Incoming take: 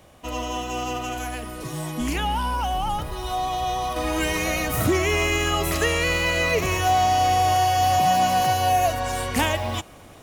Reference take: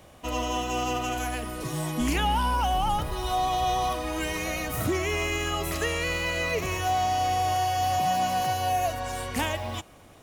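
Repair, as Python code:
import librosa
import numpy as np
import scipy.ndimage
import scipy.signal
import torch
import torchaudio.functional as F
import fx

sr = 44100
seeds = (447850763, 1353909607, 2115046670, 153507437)

y = fx.gain(x, sr, db=fx.steps((0.0, 0.0), (3.96, -6.0)))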